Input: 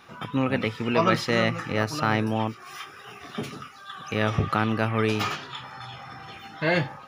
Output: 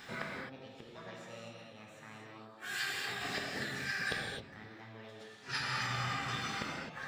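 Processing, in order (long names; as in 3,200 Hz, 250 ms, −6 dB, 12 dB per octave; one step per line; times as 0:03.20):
high-shelf EQ 4,500 Hz −2.5 dB
gate with flip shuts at −24 dBFS, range −30 dB
formants moved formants +6 semitones
reverb whose tail is shaped and stops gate 290 ms flat, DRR −2 dB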